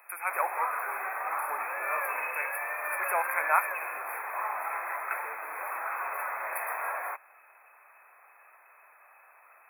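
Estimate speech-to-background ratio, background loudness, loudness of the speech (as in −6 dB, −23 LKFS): −0.5 dB, −33.0 LKFS, −33.5 LKFS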